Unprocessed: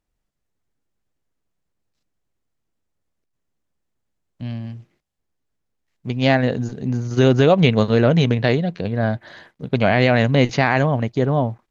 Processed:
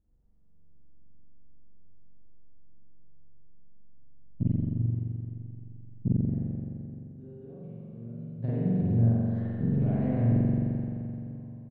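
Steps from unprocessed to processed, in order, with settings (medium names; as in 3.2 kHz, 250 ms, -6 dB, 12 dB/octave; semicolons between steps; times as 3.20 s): bass shelf 390 Hz +7.5 dB; 8.25–10.32 s: compression 12:1, threshold -29 dBFS, peak gain reduction 22 dB; inverted gate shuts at -17 dBFS, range -41 dB; FFT filter 210 Hz 0 dB, 3.9 kHz -27 dB, 5.5 kHz -22 dB; delay 142 ms -13.5 dB; spring tank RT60 2.8 s, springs 43 ms, chirp 70 ms, DRR -9 dB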